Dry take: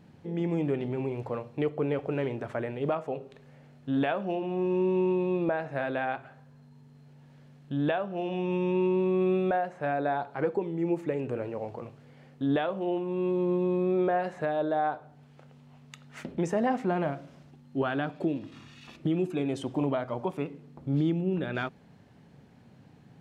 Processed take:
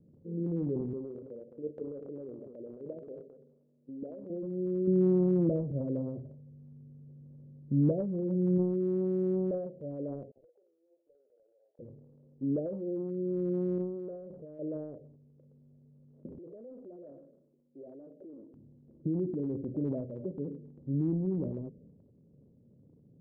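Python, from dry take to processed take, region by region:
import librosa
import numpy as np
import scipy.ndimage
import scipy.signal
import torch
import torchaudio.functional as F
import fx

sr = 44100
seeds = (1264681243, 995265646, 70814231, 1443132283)

y = fx.chain(x, sr, fx.bessel_highpass(hz=240.0, order=4),
    fx.level_steps(step_db=9),
    fx.echo_single(ms=215, db=-11.5), at=(0.93, 4.3))
y = fx.chain(y, sr, fx.highpass(hz=46.0, slope=24),
    fx.low_shelf(hz=280.0, db=11.5), at=(4.87, 8.58))
y = fx.chain(y, sr, fx.highpass(hz=1100.0, slope=24),
    fx.clip_hard(threshold_db=-36.5),
    fx.band_squash(depth_pct=40), at=(10.31, 11.79))
y = fx.chain(y, sr, fx.ladder_lowpass(hz=1800.0, resonance_pct=55),
    fx.env_flatten(amount_pct=50), at=(13.78, 14.59))
y = fx.chain(y, sr, fx.highpass(hz=430.0, slope=12),
    fx.transformer_sat(knee_hz=3800.0), at=(16.38, 18.54))
y = scipy.signal.sosfilt(scipy.signal.butter(12, 570.0, 'lowpass', fs=sr, output='sos'), y)
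y = fx.dynamic_eq(y, sr, hz=190.0, q=1.0, threshold_db=-37.0, ratio=4.0, max_db=4)
y = fx.transient(y, sr, attack_db=0, sustain_db=8)
y = F.gain(torch.from_numpy(y), -6.5).numpy()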